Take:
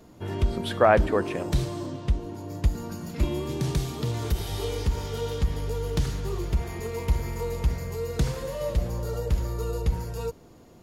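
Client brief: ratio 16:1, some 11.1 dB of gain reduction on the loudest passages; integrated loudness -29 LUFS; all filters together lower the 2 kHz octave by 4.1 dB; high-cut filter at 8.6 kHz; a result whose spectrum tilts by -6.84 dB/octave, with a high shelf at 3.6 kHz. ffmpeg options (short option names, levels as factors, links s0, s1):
-af "lowpass=8600,equalizer=f=2000:t=o:g=-4.5,highshelf=f=3600:g=-4,acompressor=threshold=0.0447:ratio=16,volume=1.78"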